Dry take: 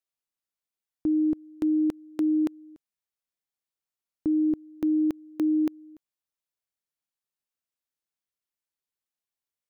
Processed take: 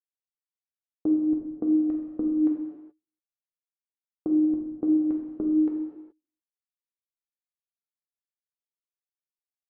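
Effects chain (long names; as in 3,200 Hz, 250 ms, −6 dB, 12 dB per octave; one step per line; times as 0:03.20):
noise gate −33 dBFS, range −32 dB
low-pass filter 1,200 Hz 12 dB per octave
downward compressor 4 to 1, threshold −33 dBFS, peak gain reduction 9.5 dB
flanger 0.52 Hz, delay 1.4 ms, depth 9.4 ms, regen +46%
reverb whose tail is shaped and stops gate 450 ms falling, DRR −1 dB
level +8.5 dB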